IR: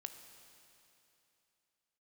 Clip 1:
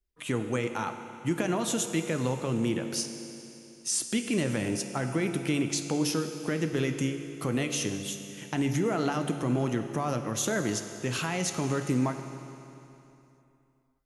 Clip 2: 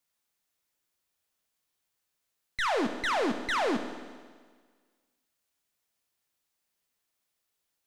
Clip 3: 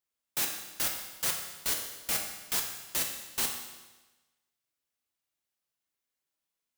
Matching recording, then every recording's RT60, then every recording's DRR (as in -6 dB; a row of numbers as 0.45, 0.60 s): 1; 2.9, 1.6, 1.2 s; 7.0, 6.5, 1.5 dB